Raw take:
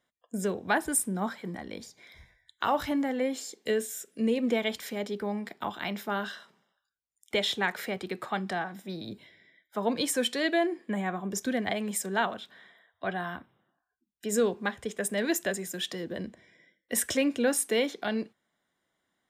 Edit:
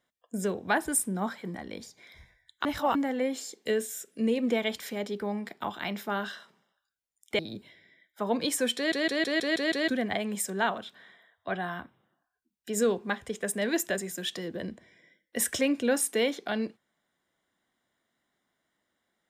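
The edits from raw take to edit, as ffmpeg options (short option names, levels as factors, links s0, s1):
-filter_complex "[0:a]asplit=11[s0][s1][s2][s3][s4][s5][s6][s7][s8][s9][s10];[s0]atrim=end=2.652[s11];[s1]atrim=start=2.648:end=2.952,asetpts=PTS-STARTPTS,areverse[s12];[s2]atrim=start=2.948:end=7.392[s13];[s3]atrim=start=8.948:end=10.482[s14];[s4]atrim=start=10.318:end=10.482[s15];[s5]atrim=start=10.318:end=10.482[s16];[s6]atrim=start=10.318:end=10.482[s17];[s7]atrim=start=10.318:end=10.482[s18];[s8]atrim=start=10.318:end=10.482[s19];[s9]atrim=start=10.318:end=10.482[s20];[s10]atrim=start=11.438[s21];[s11][s12]acrossfade=d=0.004:c1=hsin:c2=hsin[s22];[s22][s13]acrossfade=d=0.004:c1=hsin:c2=hsin[s23];[s23][s14]acrossfade=d=0.004:c1=hsin:c2=hsin[s24];[s24][s15]acrossfade=d=0.004:c1=hsin:c2=hsin[s25];[s25][s16]acrossfade=d=0.004:c1=hsin:c2=hsin[s26];[s26][s17]acrossfade=d=0.004:c1=hsin:c2=hsin[s27];[s27][s18]acrossfade=d=0.004:c1=hsin:c2=hsin[s28];[s28][s19]acrossfade=d=0.004:c1=hsin:c2=hsin[s29];[s29][s20]acrossfade=d=0.004:c1=hsin:c2=hsin[s30];[s30][s21]acrossfade=d=0.004:c1=hsin:c2=hsin"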